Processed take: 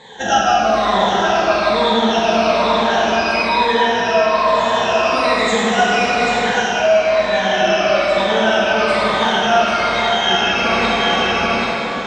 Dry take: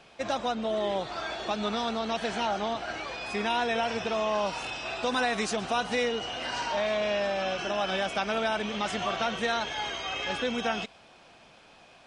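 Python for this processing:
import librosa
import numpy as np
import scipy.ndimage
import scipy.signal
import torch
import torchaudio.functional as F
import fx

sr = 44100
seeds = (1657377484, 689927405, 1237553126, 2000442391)

p1 = fx.spec_ripple(x, sr, per_octave=1.0, drift_hz=-1.1, depth_db=24)
p2 = p1 + fx.echo_single(p1, sr, ms=788, db=-9.0, dry=0)
p3 = fx.rev_plate(p2, sr, seeds[0], rt60_s=4.1, hf_ratio=0.6, predelay_ms=0, drr_db=-8.0)
p4 = fx.rider(p3, sr, range_db=10, speed_s=0.5)
y = scipy.signal.sosfilt(scipy.signal.butter(4, 7000.0, 'lowpass', fs=sr, output='sos'), p4)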